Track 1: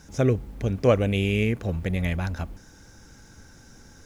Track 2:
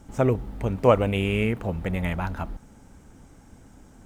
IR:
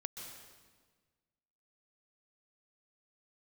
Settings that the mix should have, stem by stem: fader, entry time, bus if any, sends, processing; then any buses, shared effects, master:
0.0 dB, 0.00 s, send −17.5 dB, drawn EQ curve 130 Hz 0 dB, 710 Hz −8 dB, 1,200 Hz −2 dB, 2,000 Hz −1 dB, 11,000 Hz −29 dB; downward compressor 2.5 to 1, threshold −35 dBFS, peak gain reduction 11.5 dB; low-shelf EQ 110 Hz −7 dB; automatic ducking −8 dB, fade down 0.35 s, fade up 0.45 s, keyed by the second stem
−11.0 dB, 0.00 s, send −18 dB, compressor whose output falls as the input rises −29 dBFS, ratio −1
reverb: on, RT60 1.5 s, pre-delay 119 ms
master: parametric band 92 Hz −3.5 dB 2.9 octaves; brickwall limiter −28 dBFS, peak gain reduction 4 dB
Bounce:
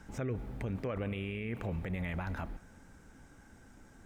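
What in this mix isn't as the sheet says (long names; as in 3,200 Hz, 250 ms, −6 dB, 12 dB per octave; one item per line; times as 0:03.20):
stem 1: missing downward compressor 2.5 to 1, threshold −35 dBFS, peak gain reduction 11.5 dB
stem 2: send off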